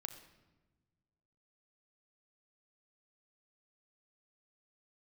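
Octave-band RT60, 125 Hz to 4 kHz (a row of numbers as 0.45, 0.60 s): 2.1, 1.8, 1.4, 1.1, 0.95, 0.80 s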